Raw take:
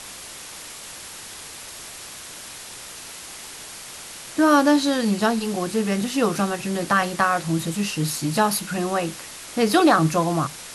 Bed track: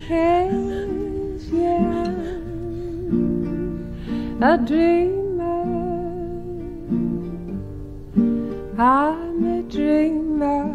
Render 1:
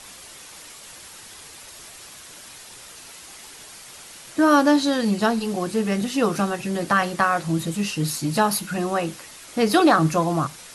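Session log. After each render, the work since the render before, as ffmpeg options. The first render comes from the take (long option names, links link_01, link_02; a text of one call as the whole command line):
ffmpeg -i in.wav -af "afftdn=noise_reduction=6:noise_floor=-39" out.wav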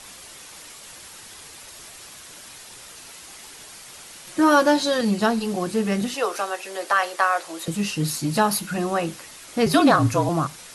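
ffmpeg -i in.wav -filter_complex "[0:a]asettb=1/sr,asplit=3[link_01][link_02][link_03];[link_01]atrim=end=4.264[link_04];[link_02]atrim=start=4.26:end=5.01,asetpts=PTS-STARTPTS,afade=type=in:duration=0.004:curve=qsin,afade=type=out:start_time=0.746:duration=0.004:curve=qsin,aecho=1:1:5.5:0.65,atrim=end_sample=33075[link_05];[link_03]atrim=start=5.006[link_06];[link_04][link_05]acrossfade=duration=0.004:curve1=hsin:curve2=qsin[link_07];[link_07][link_06]acrossfade=duration=0.004:curve1=qsin:curve2=hsin,asettb=1/sr,asplit=3[link_08][link_09][link_10];[link_08]atrim=end=6.144[link_11];[link_09]atrim=start=6.14:end=7.68,asetpts=PTS-STARTPTS,afade=type=in:duration=0.004:curve=qsin,afade=type=out:start_time=1.536:duration=0.004:curve=qsin,highpass=frequency=440:width=0.5412,highpass=frequency=440:width=1.3066[link_12];[link_10]atrim=start=7.676[link_13];[link_11][link_12]acrossfade=duration=0.004:curve1=hsin:curve2=qsin[link_14];[link_14][link_13]acrossfade=duration=0.004:curve1=qsin:curve2=hsin,asettb=1/sr,asplit=3[link_15][link_16][link_17];[link_15]atrim=end=9.664[link_18];[link_16]atrim=start=9.66:end=10.29,asetpts=PTS-STARTPTS,afade=type=in:duration=0.004:curve=qsin,afade=type=out:start_time=0.626:duration=0.004:curve=qsin,afreqshift=-42[link_19];[link_17]atrim=start=10.286[link_20];[link_18][link_19]acrossfade=duration=0.004:curve1=hsin:curve2=qsin[link_21];[link_21][link_20]acrossfade=duration=0.004:curve1=qsin:curve2=hsin" out.wav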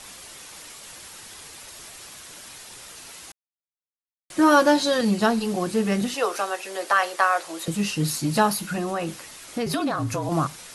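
ffmpeg -i in.wav -filter_complex "[0:a]asettb=1/sr,asplit=3[link_01][link_02][link_03];[link_01]atrim=end=8.504[link_04];[link_02]atrim=start=8.5:end=10.32,asetpts=PTS-STARTPTS,afade=type=in:duration=0.004:curve=qsin,afade=type=out:start_time=1.816:duration=0.004:curve=qsin,acompressor=threshold=-23dB:ratio=4:attack=3.2:release=140:knee=1:detection=peak[link_05];[link_03]atrim=start=10.316[link_06];[link_04][link_05]acrossfade=duration=0.004:curve1=hsin:curve2=qsin[link_07];[link_07][link_06]acrossfade=duration=0.004:curve1=qsin:curve2=hsin,asplit=3[link_08][link_09][link_10];[link_08]atrim=end=3.32,asetpts=PTS-STARTPTS,afade=type=out:start_time=3.316:duration=0.004:curve=hsin[link_11];[link_09]atrim=start=3.32:end=4.3,asetpts=PTS-STARTPTS,volume=0[link_12];[link_10]atrim=start=4.3,asetpts=PTS-STARTPTS,afade=type=in:duration=0.004:curve=hsin[link_13];[link_11][link_12][link_13]concat=n=3:v=0:a=1" out.wav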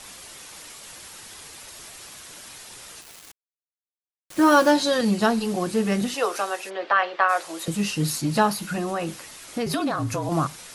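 ffmpeg -i in.wav -filter_complex "[0:a]asettb=1/sr,asplit=3[link_01][link_02][link_03];[link_01]atrim=end=3.014[link_04];[link_02]atrim=start=3.01:end=4.71,asetpts=PTS-STARTPTS,afade=type=in:duration=0.004:curve=qsin,afade=type=out:start_time=1.696:duration=0.004:curve=qsin,acrusher=bits=5:mix=0:aa=0.5[link_05];[link_03]atrim=start=4.706[link_06];[link_04][link_05]acrossfade=duration=0.004:curve1=hsin:curve2=qsin[link_07];[link_07][link_06]acrossfade=duration=0.004:curve1=qsin:curve2=hsin,asplit=3[link_08][link_09][link_10];[link_08]afade=type=out:start_time=6.69:duration=0.02[link_11];[link_09]lowpass=frequency=3600:width=0.5412,lowpass=frequency=3600:width=1.3066,afade=type=in:start_time=6.69:duration=0.02,afade=type=out:start_time=7.28:duration=0.02[link_12];[link_10]afade=type=in:start_time=7.28:duration=0.02[link_13];[link_11][link_12][link_13]amix=inputs=3:normalize=0,asettb=1/sr,asplit=3[link_14][link_15][link_16];[link_14]atrim=end=8.214[link_17];[link_15]atrim=start=8.21:end=8.62,asetpts=PTS-STARTPTS,afade=type=in:duration=0.004:curve=qsin,afade=type=out:start_time=0.406:duration=0.004:curve=qsin,highshelf=frequency=7900:gain=-6.5[link_18];[link_16]atrim=start=8.616[link_19];[link_17][link_18]acrossfade=duration=0.004:curve1=hsin:curve2=qsin[link_20];[link_20][link_19]acrossfade=duration=0.004:curve1=qsin:curve2=hsin" out.wav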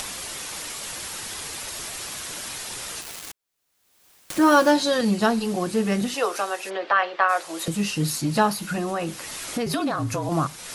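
ffmpeg -i in.wav -af "acompressor=mode=upward:threshold=-24dB:ratio=2.5" out.wav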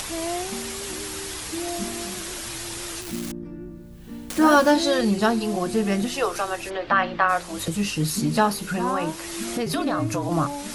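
ffmpeg -i in.wav -i bed.wav -filter_complex "[1:a]volume=-12dB[link_01];[0:a][link_01]amix=inputs=2:normalize=0" out.wav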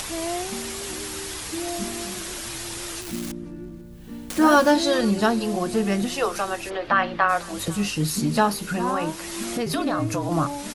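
ffmpeg -i in.wav -filter_complex "[0:a]asplit=2[link_01][link_02];[link_02]adelay=495.6,volume=-22dB,highshelf=frequency=4000:gain=-11.2[link_03];[link_01][link_03]amix=inputs=2:normalize=0" out.wav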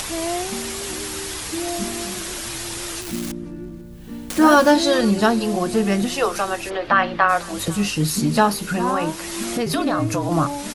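ffmpeg -i in.wav -af "volume=3.5dB,alimiter=limit=-2dB:level=0:latency=1" out.wav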